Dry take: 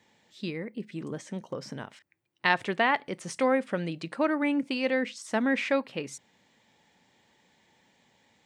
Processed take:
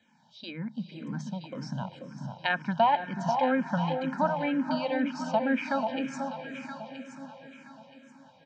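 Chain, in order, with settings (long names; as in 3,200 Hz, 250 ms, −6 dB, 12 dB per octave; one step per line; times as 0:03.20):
loudspeaker in its box 110–6,100 Hz, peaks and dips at 150 Hz +9 dB, 240 Hz +6 dB, 450 Hz −6 dB, 1,000 Hz +8 dB, 2,100 Hz −8 dB
mains-hum notches 50/100/150 Hz
comb filter 1.3 ms, depth 75%
delay that swaps between a low-pass and a high-pass 487 ms, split 960 Hz, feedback 54%, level −5 dB
treble cut that deepens with the level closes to 2,600 Hz, closed at −19.5 dBFS
on a send: feedback delay with all-pass diffusion 480 ms, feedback 52%, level −12 dB
on the sum: frequency shifter mixed with the dry sound −2 Hz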